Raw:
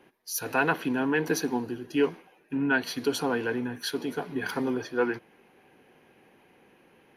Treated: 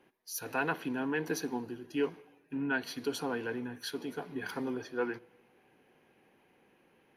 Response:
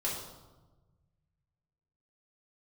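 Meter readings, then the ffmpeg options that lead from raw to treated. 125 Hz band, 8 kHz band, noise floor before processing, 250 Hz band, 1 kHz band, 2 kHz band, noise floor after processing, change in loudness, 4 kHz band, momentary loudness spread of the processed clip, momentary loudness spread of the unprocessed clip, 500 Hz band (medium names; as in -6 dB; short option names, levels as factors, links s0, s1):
-7.5 dB, -7.0 dB, -61 dBFS, -7.0 dB, -7.0 dB, -7.5 dB, -68 dBFS, -7.0 dB, -7.0 dB, 7 LU, 7 LU, -7.0 dB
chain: -filter_complex "[0:a]asplit=2[s0][s1];[1:a]atrim=start_sample=2205[s2];[s1][s2]afir=irnorm=-1:irlink=0,volume=0.0422[s3];[s0][s3]amix=inputs=2:normalize=0,volume=0.422"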